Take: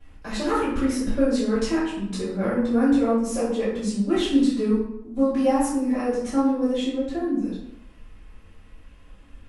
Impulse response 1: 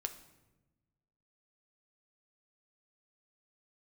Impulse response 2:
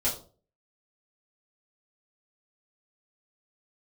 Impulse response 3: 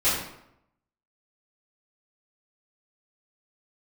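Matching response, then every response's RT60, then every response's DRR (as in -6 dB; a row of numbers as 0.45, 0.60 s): 3; 1.1, 0.40, 0.80 s; 6.5, -9.0, -14.0 dB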